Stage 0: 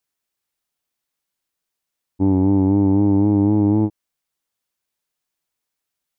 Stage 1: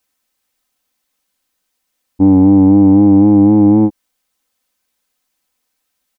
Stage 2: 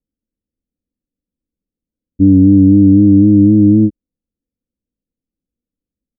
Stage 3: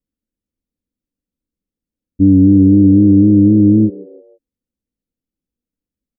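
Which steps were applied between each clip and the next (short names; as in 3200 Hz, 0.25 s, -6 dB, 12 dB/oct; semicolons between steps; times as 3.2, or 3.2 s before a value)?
in parallel at -2 dB: limiter -17 dBFS, peak gain reduction 9 dB; on the sum: comb 3.9 ms, depth 59%; gain +4 dB
Gaussian blur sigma 25 samples; gain +4.5 dB
frequency-shifting echo 0.16 s, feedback 43%, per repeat +85 Hz, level -22 dB; gain -1 dB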